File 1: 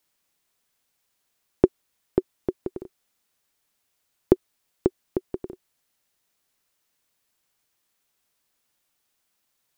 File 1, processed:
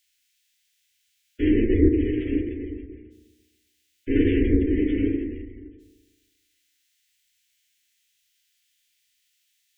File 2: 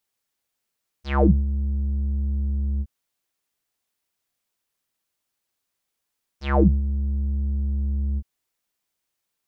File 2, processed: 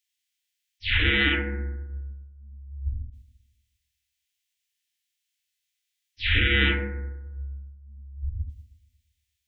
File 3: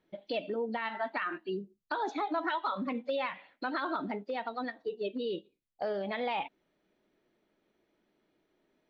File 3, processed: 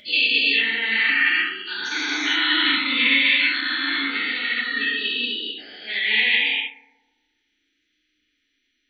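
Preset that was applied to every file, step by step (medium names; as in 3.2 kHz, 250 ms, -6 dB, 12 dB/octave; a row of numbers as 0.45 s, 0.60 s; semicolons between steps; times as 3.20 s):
every event in the spectrogram widened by 480 ms; FFT filter 100 Hz 0 dB, 150 Hz -29 dB, 240 Hz -6 dB, 620 Hz -23 dB, 1.1 kHz -16 dB, 1.9 kHz +7 dB, 3.2 kHz +12 dB, 4.7 kHz +6 dB, 6.9 kHz +6 dB, 10 kHz +1 dB; flange 1.1 Hz, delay 0.1 ms, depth 8.2 ms, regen +53%; spectral gate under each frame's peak -25 dB strong; treble shelf 3.5 kHz +6.5 dB; hum notches 60/120/180/240 Hz; FDN reverb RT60 1.2 s, low-frequency decay 1×, high-frequency decay 0.25×, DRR -0.5 dB; upward expansion 1.5:1, over -39 dBFS; peak normalisation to -6 dBFS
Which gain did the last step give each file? +3.5 dB, -2.0 dB, +6.5 dB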